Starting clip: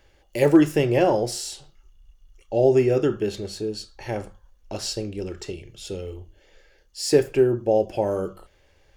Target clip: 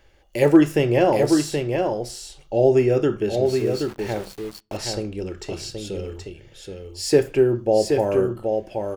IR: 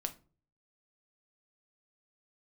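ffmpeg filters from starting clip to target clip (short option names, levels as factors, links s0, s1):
-filter_complex "[0:a]aecho=1:1:775:0.562,asettb=1/sr,asplit=3[s0][s1][s2];[s0]atrim=end=3.464[s3];[s1]atrim=start=3.46:end=4.77,asetpts=PTS-STARTPTS,afade=t=in:d=0.004:c=qsin,afade=t=out:st=1.306:d=0.004:c=qsin,aeval=exprs='val(0)*gte(abs(val(0)),0.0141)':c=same[s4];[s2]atrim=start=4.766[s5];[s3][s4]acrossfade=d=0.004:c1=hsin:c2=qsin[s6];[s6][s5]acrossfade=d=0.004:c1=qsin:c2=hsin,asplit=2[s7][s8];[1:a]atrim=start_sample=2205,lowpass=3200,highshelf=f=2500:g=8.5[s9];[s8][s9]afir=irnorm=-1:irlink=0,volume=0.188[s10];[s7][s10]amix=inputs=2:normalize=0"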